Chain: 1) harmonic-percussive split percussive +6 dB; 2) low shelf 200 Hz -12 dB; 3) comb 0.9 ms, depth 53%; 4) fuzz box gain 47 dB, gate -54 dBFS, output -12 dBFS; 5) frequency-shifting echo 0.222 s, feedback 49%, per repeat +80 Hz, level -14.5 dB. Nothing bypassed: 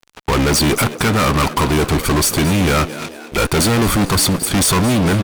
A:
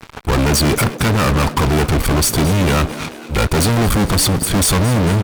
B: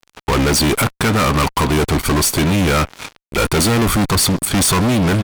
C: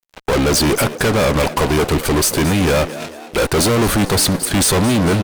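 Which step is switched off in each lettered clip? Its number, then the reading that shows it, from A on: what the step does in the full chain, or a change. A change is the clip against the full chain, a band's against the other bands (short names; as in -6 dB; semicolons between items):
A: 2, 125 Hz band +3.5 dB; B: 5, echo-to-direct -13.5 dB to none; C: 3, 500 Hz band +3.5 dB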